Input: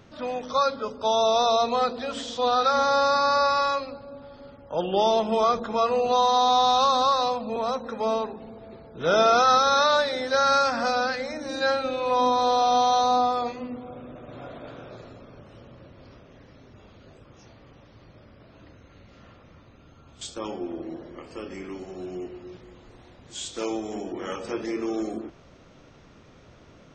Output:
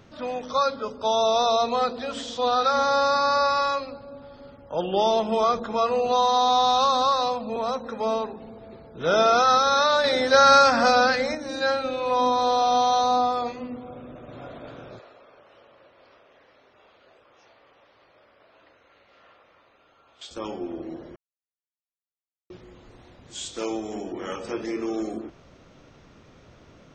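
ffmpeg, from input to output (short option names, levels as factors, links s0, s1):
-filter_complex "[0:a]asettb=1/sr,asplit=3[s0][s1][s2];[s0]atrim=end=14.994[s3];[s1]atrim=start=14.99:end=20.31,asetpts=PTS-STARTPTS,afade=t=in:d=0.004:c=qsin,afade=t=out:st=5.316:d=0.004:c=qsin,acrossover=split=440 4600:gain=0.0708 1 0.158[s4][s5][s6];[s4][s5][s6]amix=inputs=3:normalize=0[s7];[s2]atrim=start=20.306[s8];[s3][s7]acrossfade=d=0.004:c1=hsin:c2=qsin[s9];[s9][s8]acrossfade=d=0.004:c1=qsin:c2=hsin,asplit=5[s10][s11][s12][s13][s14];[s10]atrim=end=10.042[s15];[s11]atrim=start=10.038:end=11.352,asetpts=PTS-STARTPTS,volume=2[s16];[s12]atrim=start=11.348:end=21.16,asetpts=PTS-STARTPTS,afade=t=out:st=9.808:d=0.004:c=hsin[s17];[s13]atrim=start=21.16:end=22.5,asetpts=PTS-STARTPTS,volume=0[s18];[s14]atrim=start=22.5,asetpts=PTS-STARTPTS,afade=t=in:d=0.004:c=hsin[s19];[s15][s16]acrossfade=d=0.004:c1=hsin:c2=hsin[s20];[s17][s18][s19]concat=n=3:v=0:a=1[s21];[s20][s21]acrossfade=d=0.004:c1=hsin:c2=hsin"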